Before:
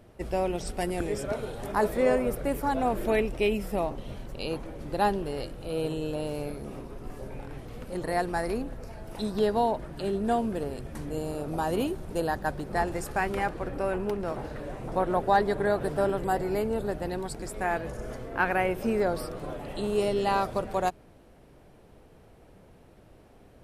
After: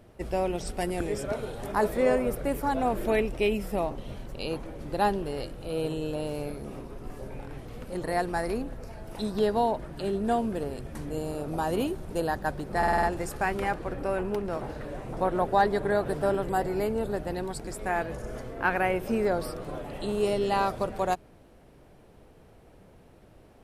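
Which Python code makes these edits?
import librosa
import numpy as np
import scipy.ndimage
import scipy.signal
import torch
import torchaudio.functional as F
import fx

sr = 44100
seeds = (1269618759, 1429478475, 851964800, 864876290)

y = fx.edit(x, sr, fx.stutter(start_s=12.78, slice_s=0.05, count=6), tone=tone)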